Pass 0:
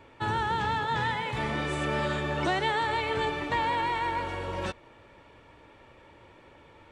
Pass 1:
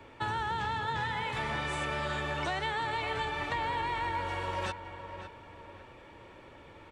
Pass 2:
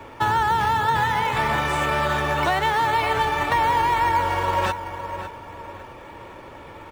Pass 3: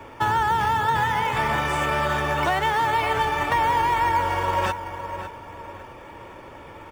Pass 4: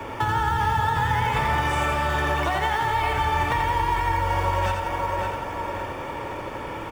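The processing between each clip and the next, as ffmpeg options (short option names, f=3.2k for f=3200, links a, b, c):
-filter_complex "[0:a]acrossover=split=130|590[a][b][c];[a]acompressor=threshold=-44dB:ratio=4[d];[b]acompressor=threshold=-47dB:ratio=4[e];[c]acompressor=threshold=-34dB:ratio=4[f];[d][e][f]amix=inputs=3:normalize=0,asplit=2[g][h];[h]adelay=556,lowpass=f=2.4k:p=1,volume=-9.5dB,asplit=2[i][j];[j]adelay=556,lowpass=f=2.4k:p=1,volume=0.39,asplit=2[k][l];[l]adelay=556,lowpass=f=2.4k:p=1,volume=0.39,asplit=2[m][n];[n]adelay=556,lowpass=f=2.4k:p=1,volume=0.39[o];[g][i][k][m][o]amix=inputs=5:normalize=0,volume=1.5dB"
-filter_complex "[0:a]asplit=2[a][b];[b]acrusher=samples=9:mix=1:aa=0.000001:lfo=1:lforange=5.4:lforate=1.9,volume=-10.5dB[c];[a][c]amix=inputs=2:normalize=0,equalizer=f=980:t=o:w=1.3:g=4.5,volume=7.5dB"
-af "bandreject=f=4k:w=8.8,volume=-1dB"
-filter_complex "[0:a]acrossover=split=110[a][b];[b]acompressor=threshold=-31dB:ratio=6[c];[a][c]amix=inputs=2:normalize=0,aecho=1:1:85|170|255|340|425|510|595:0.562|0.309|0.17|0.0936|0.0515|0.0283|0.0156,volume=7.5dB"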